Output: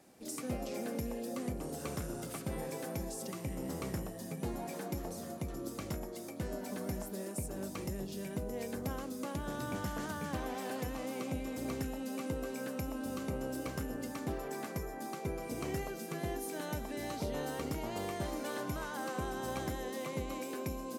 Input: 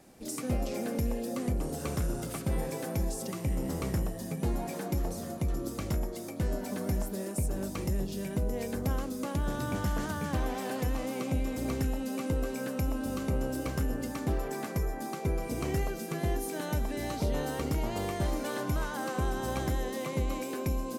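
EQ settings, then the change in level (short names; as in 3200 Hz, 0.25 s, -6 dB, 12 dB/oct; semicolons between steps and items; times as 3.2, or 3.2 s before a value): HPF 150 Hz 6 dB/oct; -4.0 dB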